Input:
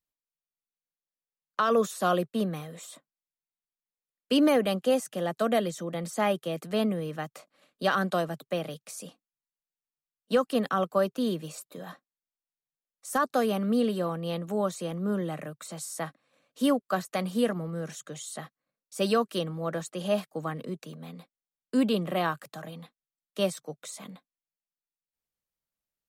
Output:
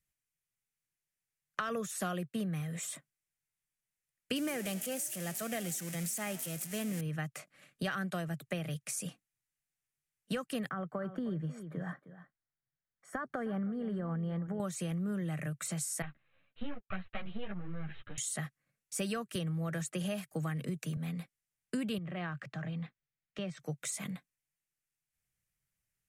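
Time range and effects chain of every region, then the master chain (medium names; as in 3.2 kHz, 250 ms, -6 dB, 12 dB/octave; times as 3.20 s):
4.36–7.01 s: zero-crossing glitches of -22 dBFS + frequency-shifting echo 80 ms, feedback 60%, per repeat +41 Hz, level -19.5 dB
10.69–14.60 s: compression, threshold -28 dBFS + Savitzky-Golay filter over 41 samples + delay 311 ms -15.5 dB
16.02–18.18 s: partial rectifier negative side -12 dB + rippled Chebyshev low-pass 4 kHz, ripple 3 dB + three-phase chorus
19.35–20.97 s: treble shelf 10 kHz +4.5 dB + three bands compressed up and down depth 40%
21.98–23.60 s: compression 2:1, threshold -42 dBFS + distance through air 190 m
whole clip: ten-band graphic EQ 125 Hz +8 dB, 250 Hz -8 dB, 500 Hz -8 dB, 1 kHz -11 dB, 2 kHz +4 dB, 4 kHz -10 dB; compression 6:1, threshold -42 dBFS; low-pass 12 kHz 12 dB/octave; trim +8.5 dB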